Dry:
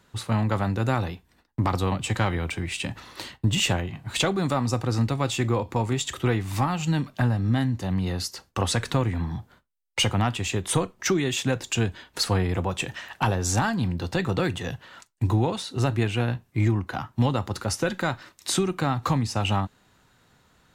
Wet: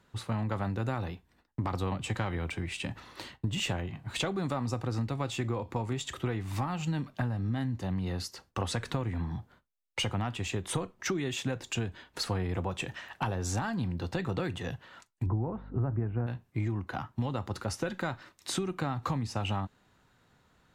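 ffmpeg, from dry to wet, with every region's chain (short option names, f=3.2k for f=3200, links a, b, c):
-filter_complex "[0:a]asettb=1/sr,asplit=3[a][b][c];[a]atrim=end=15.264[d];[b]atrim=start=15.26:end=16.27,asetpts=PTS-STARTPTS,afade=t=in:d=0.004:c=qsin,afade=t=out:st=1.006:d=0.004:c=qsin,lowpass=f=1.5k:w=0.5412,lowpass=f=1.5k:w=1.3066,equalizer=f=88:w=0.34:g=6.5,aeval=exprs='val(0)+0.01*(sin(2*PI*50*n/s)+sin(2*PI*2*50*n/s)/2+sin(2*PI*3*50*n/s)/3+sin(2*PI*4*50*n/s)/4+sin(2*PI*5*50*n/s)/5)':c=same[e];[c]atrim=start=16.266[f];[d][e]acrossfade=d=0.004:c1=hsin:c2=qsin[g];[g][f]acrossfade=d=0.004:c1=qsin:c2=hsin,highshelf=f=3.9k:g=-6,acompressor=threshold=-23dB:ratio=6,volume=-4.5dB"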